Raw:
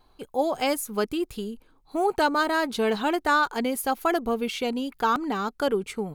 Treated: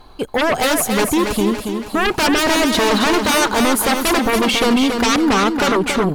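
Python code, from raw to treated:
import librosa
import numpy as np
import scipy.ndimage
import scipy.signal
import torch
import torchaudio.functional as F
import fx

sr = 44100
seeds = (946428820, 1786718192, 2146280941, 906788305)

p1 = fx.high_shelf(x, sr, hz=9700.0, db=-6.5)
p2 = fx.fold_sine(p1, sr, drive_db=15, ceiling_db=-11.5)
p3 = p1 + F.gain(torch.from_numpy(p2), -3.0).numpy()
y = fx.echo_feedback(p3, sr, ms=279, feedback_pct=50, wet_db=-6.0)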